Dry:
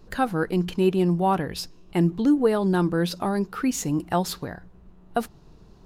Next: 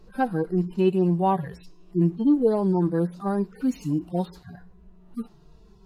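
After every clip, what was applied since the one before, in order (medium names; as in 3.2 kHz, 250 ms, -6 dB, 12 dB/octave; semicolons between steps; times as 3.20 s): harmonic-percussive separation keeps harmonic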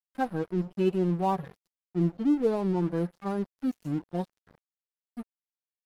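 crossover distortion -38 dBFS; trim -4 dB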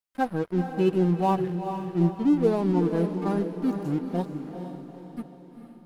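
echo that smears into a reverb 453 ms, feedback 48%, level -7.5 dB; trim +3 dB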